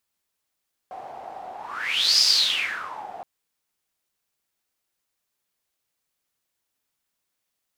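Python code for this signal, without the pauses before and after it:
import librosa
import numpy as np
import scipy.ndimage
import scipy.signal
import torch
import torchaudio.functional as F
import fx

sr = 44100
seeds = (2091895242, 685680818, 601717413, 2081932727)

y = fx.whoosh(sr, seeds[0], length_s=2.32, peak_s=1.3, rise_s=0.7, fall_s=0.95, ends_hz=750.0, peak_hz=5000.0, q=10.0, swell_db=19.5)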